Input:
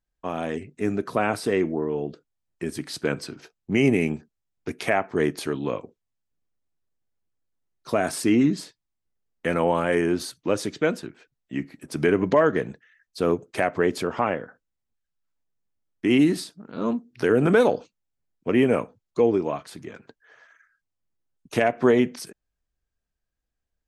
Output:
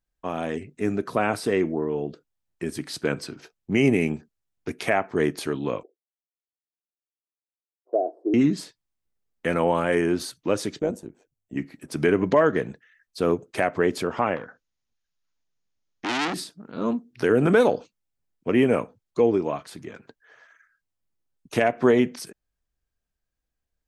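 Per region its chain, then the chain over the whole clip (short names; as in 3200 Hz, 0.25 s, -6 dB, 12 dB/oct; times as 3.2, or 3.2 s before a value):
5.83–8.34 elliptic band-pass 330–720 Hz, stop band 60 dB + three-band expander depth 40%
10.79–11.57 band shelf 2300 Hz -14 dB 2.3 oct + notch 5100 Hz, Q 11 + AM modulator 100 Hz, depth 40%
14.36–16.34 brick-wall FIR low-pass 7100 Hz + high shelf 2200 Hz +8.5 dB + core saturation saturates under 4000 Hz
whole clip: dry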